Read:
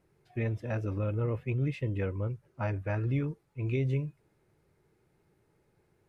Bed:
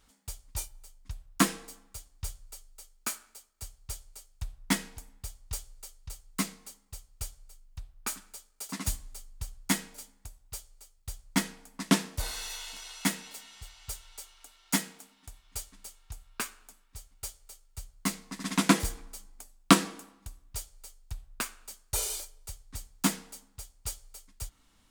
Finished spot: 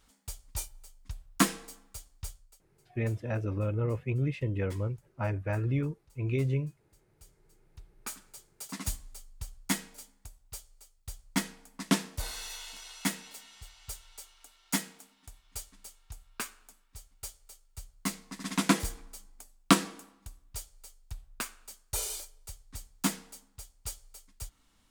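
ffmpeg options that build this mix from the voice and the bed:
-filter_complex "[0:a]adelay=2600,volume=0.5dB[a];[1:a]volume=18.5dB,afade=t=out:st=2.1:d=0.51:silence=0.0891251,afade=t=in:st=7.18:d=1.32:silence=0.112202[b];[a][b]amix=inputs=2:normalize=0"

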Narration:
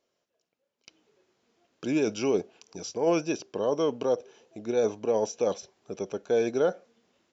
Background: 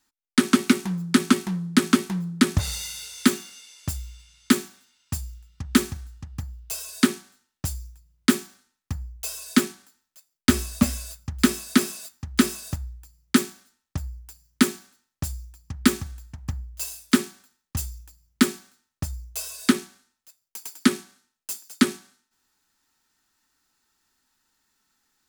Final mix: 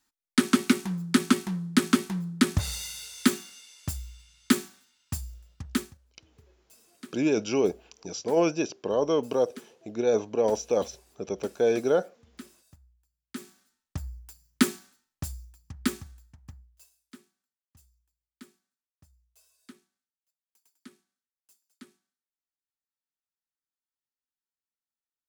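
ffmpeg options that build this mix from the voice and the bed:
-filter_complex "[0:a]adelay=5300,volume=1.5dB[a];[1:a]volume=19dB,afade=t=out:st=5.5:d=0.48:silence=0.0749894,afade=t=in:st=13.3:d=0.79:silence=0.0749894,afade=t=out:st=14.88:d=2.02:silence=0.0421697[b];[a][b]amix=inputs=2:normalize=0"

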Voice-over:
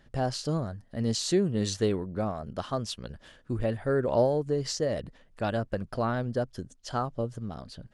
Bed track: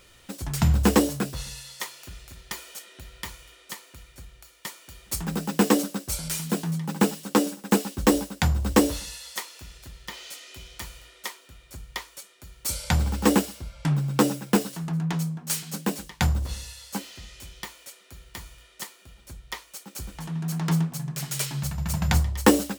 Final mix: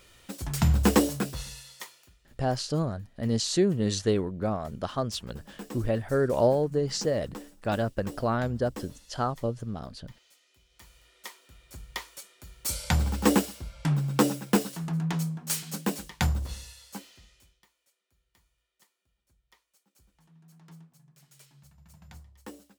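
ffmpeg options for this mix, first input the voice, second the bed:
-filter_complex "[0:a]adelay=2250,volume=1.5dB[a];[1:a]volume=17.5dB,afade=t=out:st=1.33:d=0.84:silence=0.105925,afade=t=in:st=10.68:d=1.31:silence=0.105925,afade=t=out:st=16.09:d=1.51:silence=0.0530884[b];[a][b]amix=inputs=2:normalize=0"

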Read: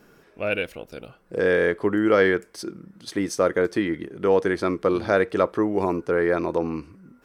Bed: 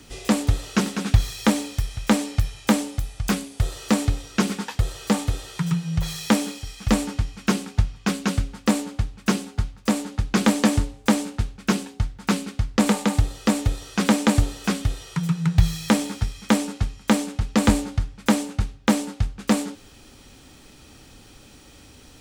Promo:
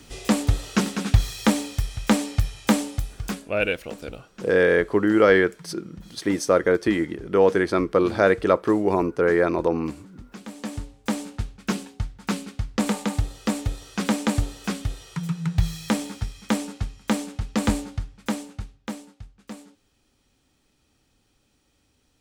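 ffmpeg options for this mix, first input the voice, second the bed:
-filter_complex "[0:a]adelay=3100,volume=2dB[a];[1:a]volume=16dB,afade=t=out:st=2.99:d=0.53:silence=0.0944061,afade=t=in:st=10.47:d=0.9:silence=0.149624,afade=t=out:st=17.73:d=1.43:silence=0.188365[b];[a][b]amix=inputs=2:normalize=0"

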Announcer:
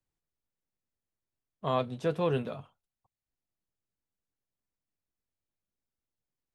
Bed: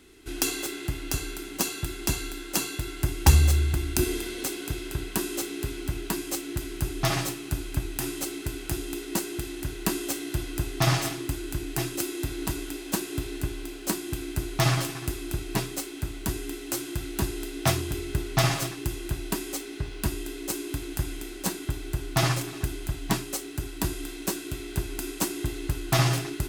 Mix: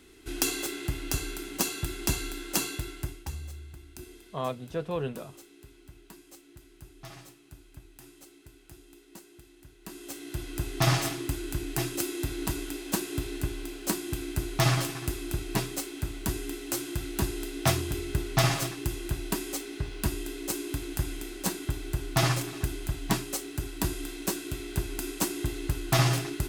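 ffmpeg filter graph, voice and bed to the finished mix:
-filter_complex "[0:a]adelay=2700,volume=-3dB[a];[1:a]volume=18.5dB,afade=t=out:st=2.67:d=0.6:silence=0.105925,afade=t=in:st=9.82:d=1.04:silence=0.105925[b];[a][b]amix=inputs=2:normalize=0"

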